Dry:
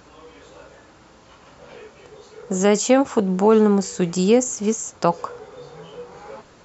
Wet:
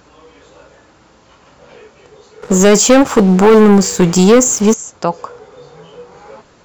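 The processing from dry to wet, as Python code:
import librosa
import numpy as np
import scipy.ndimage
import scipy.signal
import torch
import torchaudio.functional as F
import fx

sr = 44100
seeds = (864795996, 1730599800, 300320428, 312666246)

y = fx.leveller(x, sr, passes=3, at=(2.42, 4.74))
y = F.gain(torch.from_numpy(y), 2.0).numpy()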